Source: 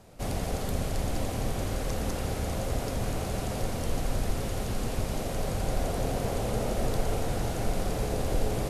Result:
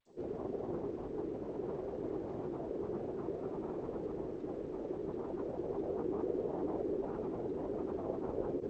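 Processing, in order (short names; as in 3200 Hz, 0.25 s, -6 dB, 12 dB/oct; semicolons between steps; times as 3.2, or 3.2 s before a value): grains 0.1 s, pitch spread up and down by 12 st; band-pass 390 Hz, Q 3; air absorption 130 m; gain +3 dB; G.722 64 kbps 16000 Hz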